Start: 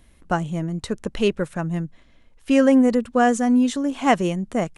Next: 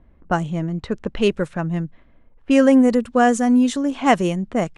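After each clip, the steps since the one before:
low-pass that shuts in the quiet parts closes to 1,100 Hz, open at −17 dBFS
level +2 dB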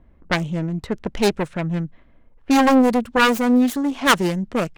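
phase distortion by the signal itself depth 0.85 ms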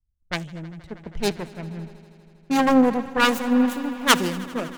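echo that builds up and dies away 80 ms, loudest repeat 5, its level −17 dB
multiband upward and downward expander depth 100%
level −5.5 dB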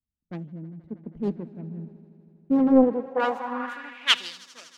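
band-pass filter sweep 240 Hz → 5,400 Hz, 0:02.68–0:04.47
highs frequency-modulated by the lows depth 0.71 ms
level +3.5 dB

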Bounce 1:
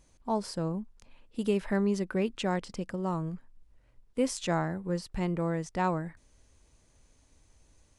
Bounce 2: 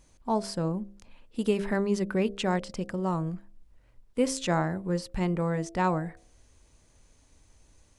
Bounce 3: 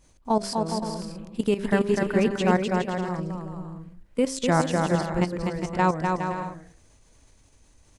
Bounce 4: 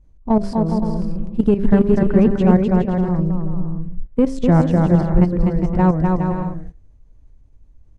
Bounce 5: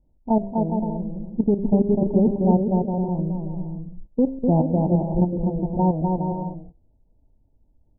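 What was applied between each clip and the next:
hum removal 66.56 Hz, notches 11; level +3 dB
output level in coarse steps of 13 dB; bouncing-ball delay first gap 250 ms, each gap 0.65×, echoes 5; level +6.5 dB
noise gate −48 dBFS, range −12 dB; spectral tilt −4.5 dB per octave; in parallel at −5.5 dB: soft clipping −15 dBFS, distortion −9 dB; on the sum: level −2 dB
Chebyshev low-pass with heavy ripple 930 Hz, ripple 3 dB; low-shelf EQ 140 Hz −10 dB; level −1 dB

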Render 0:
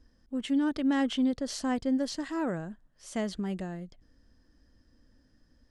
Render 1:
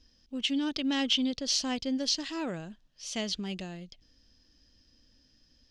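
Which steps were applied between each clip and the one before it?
flat-topped bell 3,900 Hz +15 dB
level −3.5 dB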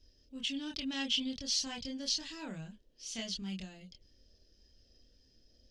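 noise in a band 240–580 Hz −67 dBFS
multi-voice chorus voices 6, 0.42 Hz, delay 26 ms, depth 1.1 ms
parametric band 620 Hz −9 dB 2.9 octaves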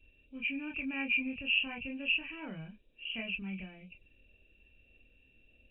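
hearing-aid frequency compression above 2,200 Hz 4 to 1

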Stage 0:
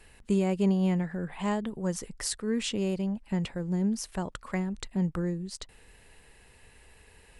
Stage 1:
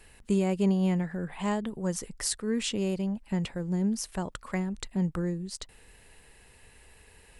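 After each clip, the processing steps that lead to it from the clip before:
high-shelf EQ 7,800 Hz +4.5 dB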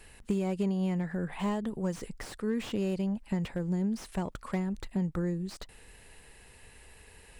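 downward compressor 6 to 1, threshold −28 dBFS, peak gain reduction 7.5 dB
slew-rate limiting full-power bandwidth 25 Hz
level +1.5 dB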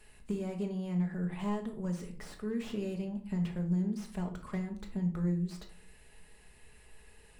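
convolution reverb RT60 0.50 s, pre-delay 5 ms, DRR 3 dB
level −7.5 dB

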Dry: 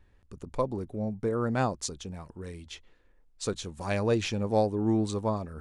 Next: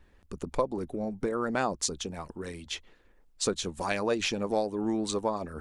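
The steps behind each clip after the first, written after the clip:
parametric band 110 Hz −14 dB 0.46 octaves
harmonic and percussive parts rebalanced percussive +8 dB
downward compressor 2 to 1, threshold −28 dBFS, peak gain reduction 7.5 dB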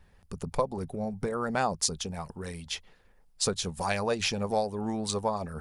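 thirty-one-band graphic EQ 100 Hz +8 dB, 160 Hz +7 dB, 315 Hz −11 dB, 800 Hz +4 dB, 5,000 Hz +5 dB, 10,000 Hz +8 dB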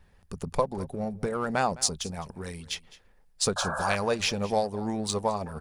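in parallel at −10 dB: dead-zone distortion −34 dBFS
on the sum: sound drawn into the spectrogram noise, 0:03.56–0:03.96, 510–1,700 Hz −32 dBFS
single-tap delay 210 ms −19.5 dB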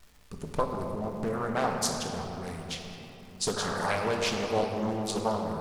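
surface crackle 420 per second −43 dBFS
rectangular room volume 210 cubic metres, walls hard, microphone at 0.43 metres
highs frequency-modulated by the lows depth 0.47 ms
level −4 dB

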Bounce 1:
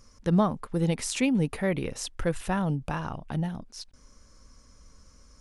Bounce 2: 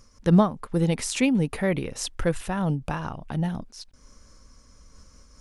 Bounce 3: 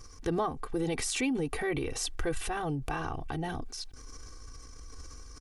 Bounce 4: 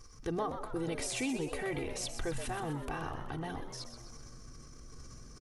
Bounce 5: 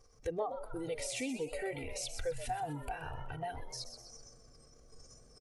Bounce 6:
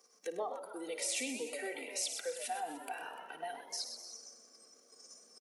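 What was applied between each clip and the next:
amplitude modulation by smooth noise, depth 65%; level +6 dB
comb filter 2.6 ms, depth 96%; transient designer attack −3 dB, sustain +6 dB; downward compressor 2 to 1, threshold −34 dBFS, peak gain reduction 10 dB
echo with shifted repeats 126 ms, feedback 54%, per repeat +110 Hz, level −9 dB; level −5 dB
noise reduction from a noise print of the clip's start 14 dB; flat-topped bell 580 Hz +10.5 dB 1.1 octaves; downward compressor 2 to 1, threshold −44 dBFS, peak gain reduction 11.5 dB; level +3.5 dB
Butterworth high-pass 190 Hz 72 dB per octave; spectral tilt +2 dB per octave; on a send: multi-tap delay 55/101/296 ms −14.5/−11.5/−16.5 dB; on the sum: level −1 dB

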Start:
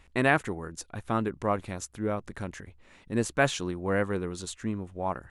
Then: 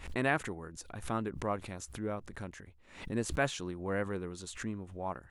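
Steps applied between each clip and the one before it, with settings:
background raised ahead of every attack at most 98 dB per second
level −7 dB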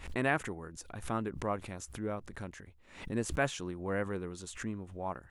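dynamic equaliser 4,100 Hz, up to −4 dB, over −58 dBFS, Q 3.3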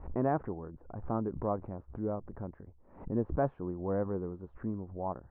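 low-pass filter 1,000 Hz 24 dB per octave
level +2.5 dB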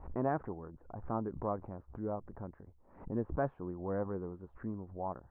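auto-filter bell 4.2 Hz 770–1,900 Hz +6 dB
level −4 dB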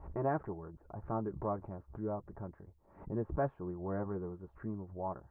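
notch comb filter 250 Hz
level +1 dB

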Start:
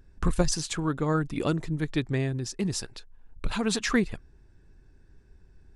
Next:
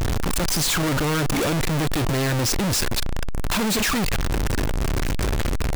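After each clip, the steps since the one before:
sign of each sample alone
level +8 dB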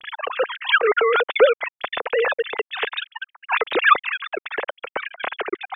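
three sine waves on the formant tracks
level −1 dB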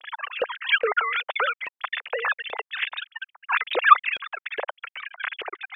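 auto-filter high-pass saw up 2.4 Hz 540–3,000 Hz
level −6 dB

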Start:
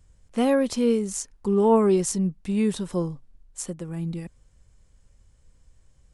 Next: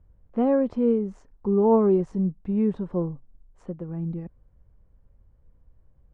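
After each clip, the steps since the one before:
low-pass filter 1,000 Hz 12 dB per octave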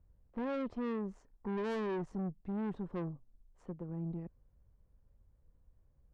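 tube saturation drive 28 dB, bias 0.55
level −6 dB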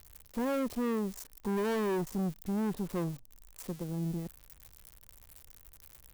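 spike at every zero crossing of −39.5 dBFS
level +5 dB

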